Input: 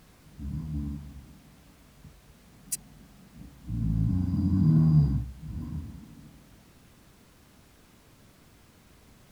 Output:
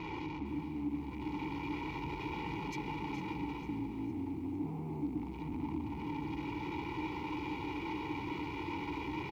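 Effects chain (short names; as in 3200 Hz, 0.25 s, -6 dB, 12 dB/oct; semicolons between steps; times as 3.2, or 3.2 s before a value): zero-crossing step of -33.5 dBFS; formant shift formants -2 st; running mean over 5 samples; bell 74 Hz +4.5 dB 1.3 oct; comb 2.1 ms, depth 78%; in parallel at -1 dB: limiter -22 dBFS, peak gain reduction 11 dB; on the sum: hard clip -23.5 dBFS, distortion -5 dB; vowel filter u; vocal rider 0.5 s; echo 0.418 s -11 dB; lo-fi delay 0.454 s, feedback 55%, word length 11-bit, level -14 dB; gain +6 dB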